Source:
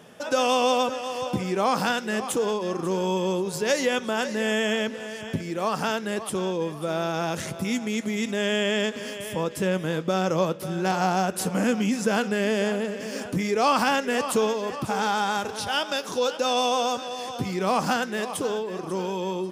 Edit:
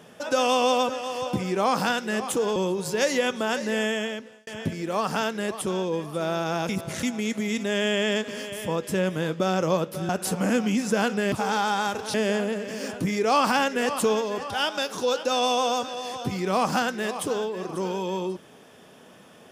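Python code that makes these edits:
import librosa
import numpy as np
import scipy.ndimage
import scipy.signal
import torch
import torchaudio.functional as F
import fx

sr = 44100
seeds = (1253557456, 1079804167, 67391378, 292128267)

y = fx.edit(x, sr, fx.cut(start_s=2.56, length_s=0.68),
    fx.fade_out_span(start_s=4.44, length_s=0.71),
    fx.reverse_span(start_s=7.37, length_s=0.34),
    fx.cut(start_s=10.77, length_s=0.46),
    fx.move(start_s=14.82, length_s=0.82, to_s=12.46), tone=tone)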